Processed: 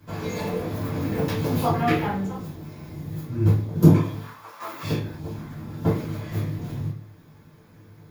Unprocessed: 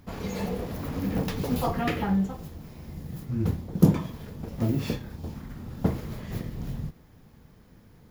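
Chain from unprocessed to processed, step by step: 4.21–4.83 s: resonant high-pass 1.1 kHz, resonance Q 3.6; reverberation RT60 0.40 s, pre-delay 3 ms, DRR -12.5 dB; trim -7 dB

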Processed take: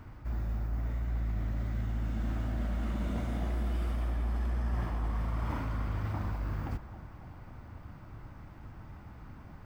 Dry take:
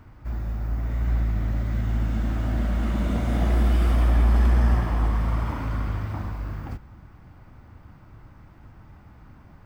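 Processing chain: reverse; compression 6:1, threshold -30 dBFS, peak gain reduction 14 dB; reverse; band-passed feedback delay 272 ms, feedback 74%, band-pass 710 Hz, level -12.5 dB

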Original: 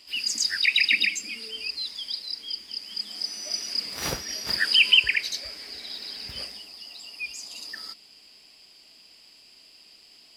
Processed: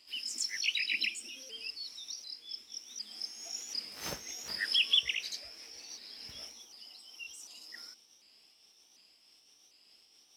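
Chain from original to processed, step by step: sawtooth pitch modulation +3 st, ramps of 747 ms; bass shelf 91 Hz -6.5 dB; trim -9 dB

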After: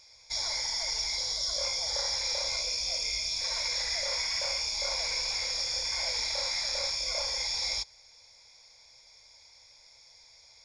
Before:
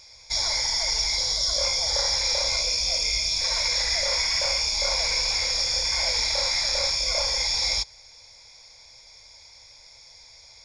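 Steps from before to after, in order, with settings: bass shelf 150 Hz -5.5 dB; trim -7 dB

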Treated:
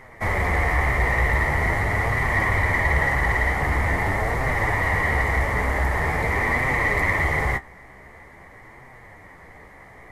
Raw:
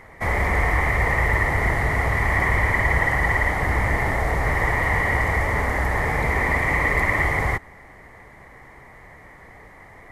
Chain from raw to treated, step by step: flange 0.45 Hz, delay 7.5 ms, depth 9.1 ms, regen +42%; in parallel at -8 dB: saturation -22.5 dBFS, distortion -13 dB; on the sum: trim +1 dB

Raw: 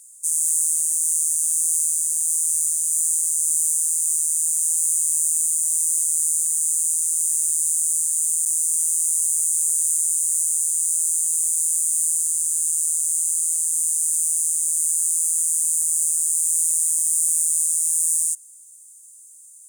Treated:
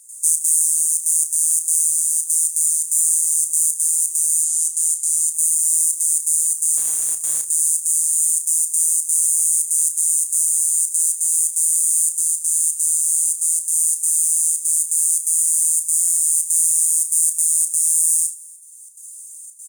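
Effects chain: 4.44–5.34 s: frequency weighting A; reverb removal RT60 1.1 s; bass shelf 94 Hz -8.5 dB; band-stop 7.7 kHz, Q 19; in parallel at +1.5 dB: compression, threshold -36 dBFS, peak gain reduction 16.5 dB; on the sum: trance gate ".xxx.xxxxxx.xx" 170 bpm -12 dB; 6.77–7.47 s: overload inside the chain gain 19.5 dB; doubling 32 ms -8.5 dB; frequency-shifting echo 295 ms, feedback 40%, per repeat +75 Hz, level -23.5 dB; on a send at -20 dB: reverberation RT60 0.60 s, pre-delay 49 ms; on the sum: buffer glitch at 15.98 s, samples 1024, times 7; trim +5 dB

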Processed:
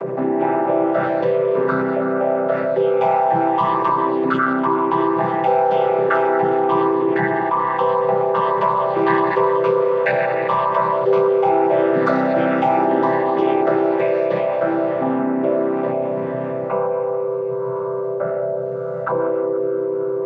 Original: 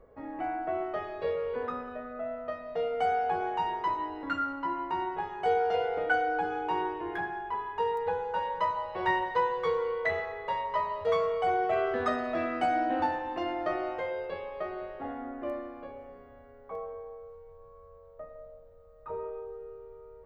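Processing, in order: vocoder on a held chord major triad, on C3; level flattener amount 70%; trim +8.5 dB

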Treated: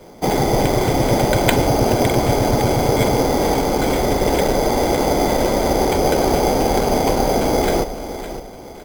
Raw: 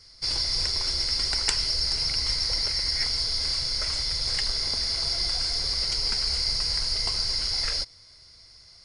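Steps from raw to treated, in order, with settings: rippled EQ curve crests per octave 1.7, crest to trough 16 dB; feedback delay 559 ms, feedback 37%, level -12 dB; careless resampling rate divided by 8×, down none, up hold; trim +5.5 dB

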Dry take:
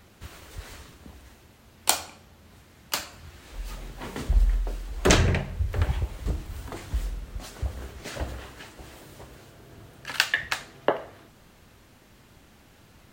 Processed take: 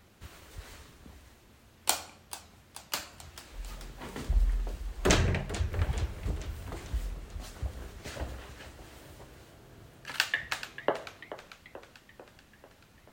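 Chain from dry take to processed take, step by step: modulated delay 439 ms, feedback 59%, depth 189 cents, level -14 dB; trim -5.5 dB

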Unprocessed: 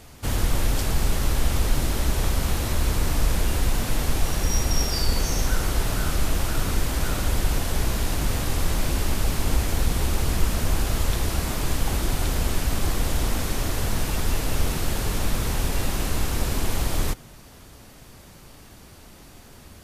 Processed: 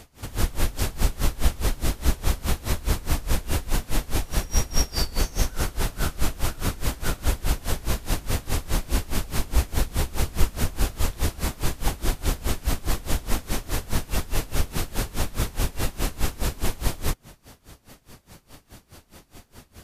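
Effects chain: logarithmic tremolo 4.8 Hz, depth 23 dB; trim +3.5 dB

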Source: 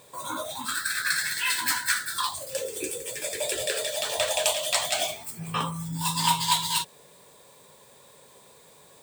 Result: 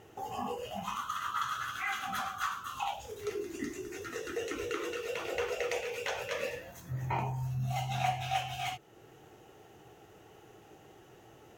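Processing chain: compression 1.5:1, threshold -39 dBFS, peak gain reduction 8 dB; tone controls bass +3 dB, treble -15 dB; tape speed -22%

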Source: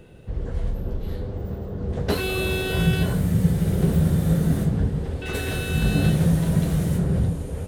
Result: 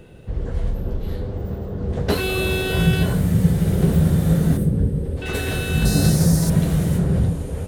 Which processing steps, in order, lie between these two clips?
4.57–5.17 s: time-frequency box 620–7900 Hz -10 dB; 5.85–6.50 s: resonant high shelf 4 kHz +8 dB, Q 3; trim +3 dB

